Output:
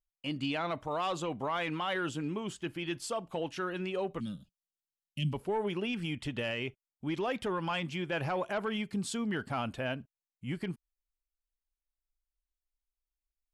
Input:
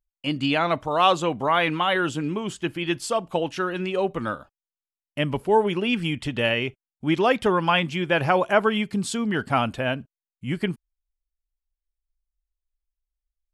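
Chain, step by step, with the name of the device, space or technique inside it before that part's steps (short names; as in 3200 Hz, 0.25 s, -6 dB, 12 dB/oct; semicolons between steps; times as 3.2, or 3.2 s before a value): soft clipper into limiter (soft clip -11 dBFS, distortion -20 dB; limiter -17.5 dBFS, peak gain reduction 6 dB); 4.2–5.33 EQ curve 110 Hz 0 dB, 180 Hz +12 dB, 360 Hz -14 dB, 1400 Hz -28 dB, 2800 Hz +4 dB; gain -8 dB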